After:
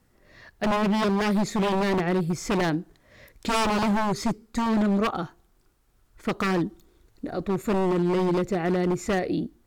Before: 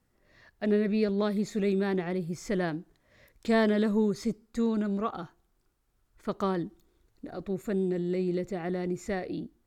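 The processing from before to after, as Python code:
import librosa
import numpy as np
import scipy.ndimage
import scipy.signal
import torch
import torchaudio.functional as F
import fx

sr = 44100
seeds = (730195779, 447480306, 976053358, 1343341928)

y = 10.0 ** (-26.5 / 20.0) * (np.abs((x / 10.0 ** (-26.5 / 20.0) + 3.0) % 4.0 - 2.0) - 1.0)
y = F.gain(torch.from_numpy(y), 8.5).numpy()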